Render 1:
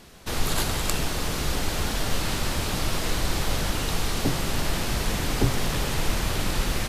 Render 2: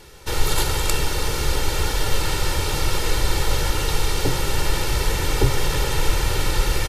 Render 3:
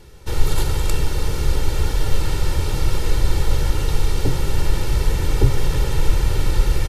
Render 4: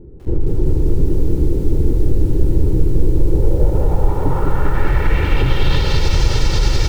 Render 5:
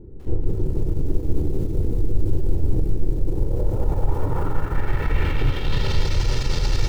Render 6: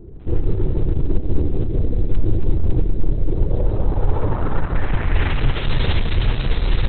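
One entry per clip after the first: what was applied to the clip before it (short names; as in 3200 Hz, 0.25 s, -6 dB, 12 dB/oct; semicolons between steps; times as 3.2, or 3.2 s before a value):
comb 2.2 ms, depth 72%; gain +2 dB
low shelf 370 Hz +10.5 dB; gain -6 dB
low-pass sweep 320 Hz -> 5400 Hz, 3.03–6.11; maximiser +11.5 dB; lo-fi delay 0.197 s, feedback 80%, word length 6-bit, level -7 dB; gain -6 dB
limiter -9 dBFS, peak gain reduction 7.5 dB; soft clip -11 dBFS, distortion -20 dB; on a send at -5.5 dB: reverb RT60 0.95 s, pre-delay 8 ms; on the sum: gain -3.5 dB
gain +3.5 dB; Opus 6 kbps 48000 Hz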